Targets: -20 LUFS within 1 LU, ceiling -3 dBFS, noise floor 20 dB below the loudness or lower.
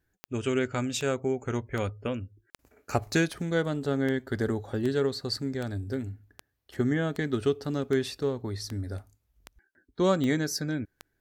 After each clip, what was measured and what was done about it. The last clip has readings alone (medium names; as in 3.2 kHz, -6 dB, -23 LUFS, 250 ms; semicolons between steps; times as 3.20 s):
clicks found 15; loudness -30.0 LUFS; peak level -11.0 dBFS; loudness target -20.0 LUFS
-> de-click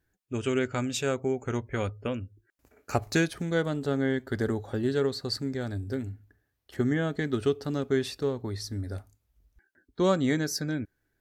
clicks found 0; loudness -30.0 LUFS; peak level -11.0 dBFS; loudness target -20.0 LUFS
-> trim +10 dB; peak limiter -3 dBFS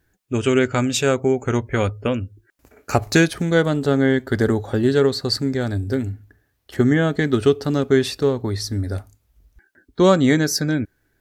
loudness -20.0 LUFS; peak level -3.0 dBFS; noise floor -68 dBFS